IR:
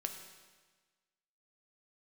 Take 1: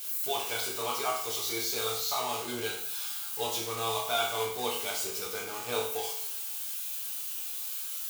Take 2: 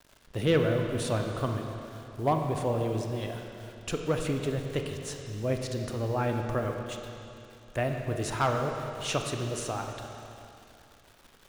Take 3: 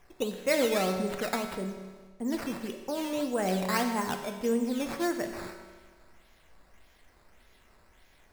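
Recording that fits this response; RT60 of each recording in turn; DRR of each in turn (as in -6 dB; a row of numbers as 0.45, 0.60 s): 3; 0.65, 2.8, 1.4 s; -4.0, 3.0, 4.5 dB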